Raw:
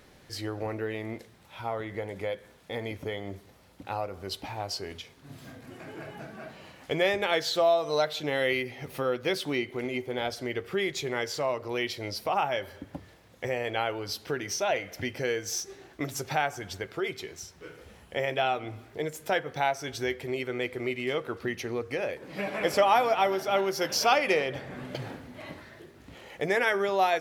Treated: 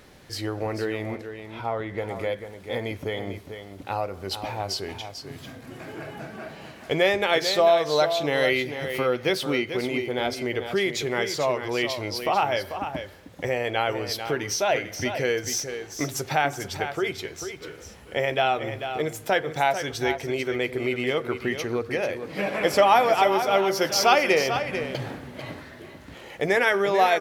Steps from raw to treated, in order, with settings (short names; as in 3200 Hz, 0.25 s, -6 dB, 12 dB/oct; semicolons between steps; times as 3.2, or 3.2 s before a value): 1.15–1.98 LPF 3900 Hz 6 dB/oct; on a send: echo 0.443 s -9 dB; on the sum: gain +4.5 dB